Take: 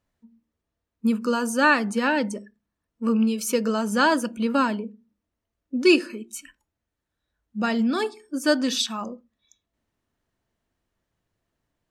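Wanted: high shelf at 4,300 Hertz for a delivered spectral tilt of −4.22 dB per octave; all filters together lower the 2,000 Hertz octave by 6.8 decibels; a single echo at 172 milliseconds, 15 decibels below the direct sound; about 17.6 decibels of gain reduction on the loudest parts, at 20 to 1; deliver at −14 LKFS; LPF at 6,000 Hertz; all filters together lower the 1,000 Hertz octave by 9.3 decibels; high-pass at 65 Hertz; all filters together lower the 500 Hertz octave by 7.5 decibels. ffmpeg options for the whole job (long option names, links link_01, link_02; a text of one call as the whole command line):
ffmpeg -i in.wav -af "highpass=65,lowpass=6000,equalizer=frequency=500:width_type=o:gain=-8,equalizer=frequency=1000:width_type=o:gain=-8,equalizer=frequency=2000:width_type=o:gain=-4.5,highshelf=frequency=4300:gain=-4.5,acompressor=threshold=-36dB:ratio=20,aecho=1:1:172:0.178,volume=27dB" out.wav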